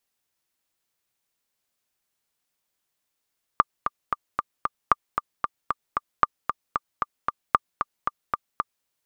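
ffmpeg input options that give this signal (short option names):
-f lavfi -i "aevalsrc='pow(10,(-2.5-7.5*gte(mod(t,5*60/228),60/228))/20)*sin(2*PI*1190*mod(t,60/228))*exp(-6.91*mod(t,60/228)/0.03)':d=5.26:s=44100"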